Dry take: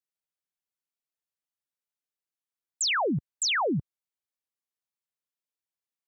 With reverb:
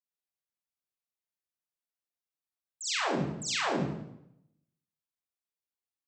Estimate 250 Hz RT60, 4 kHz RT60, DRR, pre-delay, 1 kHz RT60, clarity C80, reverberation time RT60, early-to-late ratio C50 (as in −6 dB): 0.90 s, 0.65 s, −10.0 dB, 31 ms, 0.80 s, 2.5 dB, 0.80 s, −2.5 dB